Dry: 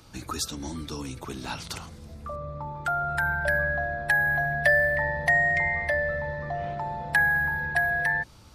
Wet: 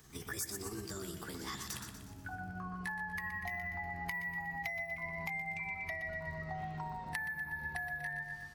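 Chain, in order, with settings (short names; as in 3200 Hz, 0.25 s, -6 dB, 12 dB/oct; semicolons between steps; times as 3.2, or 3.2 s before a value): gliding pitch shift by +5.5 st ending unshifted; bell 560 Hz -13.5 dB 0.29 oct; on a send: feedback echo 0.121 s, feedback 46%, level -8 dB; on the sum: compressor 12:1, threshold -31 dBFS, peak gain reduction 14 dB; crackle 39/s -49 dBFS; high shelf 9500 Hz +6.5 dB; gain -6 dB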